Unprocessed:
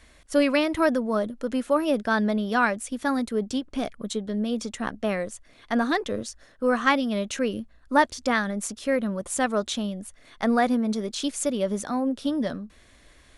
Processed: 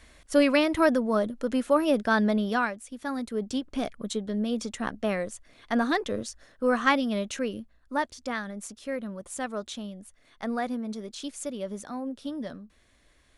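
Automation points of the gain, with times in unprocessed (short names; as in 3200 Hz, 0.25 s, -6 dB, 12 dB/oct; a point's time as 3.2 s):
2.48 s 0 dB
2.78 s -10.5 dB
3.62 s -1.5 dB
7.11 s -1.5 dB
7.95 s -8.5 dB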